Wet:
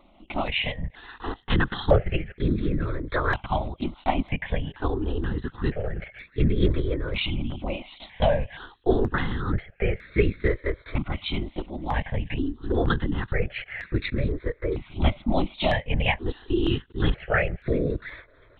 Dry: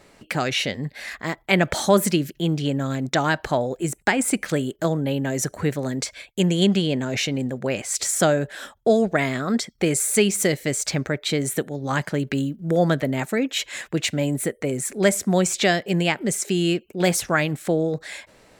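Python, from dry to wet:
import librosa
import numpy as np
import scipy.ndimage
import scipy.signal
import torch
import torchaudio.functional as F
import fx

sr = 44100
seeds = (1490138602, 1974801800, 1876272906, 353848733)

p1 = x + fx.echo_wet_highpass(x, sr, ms=686, feedback_pct=33, hz=2200.0, wet_db=-15.0, dry=0)
p2 = fx.lpc_vocoder(p1, sr, seeds[0], excitation='whisper', order=10)
y = fx.phaser_held(p2, sr, hz=2.1, low_hz=450.0, high_hz=3000.0)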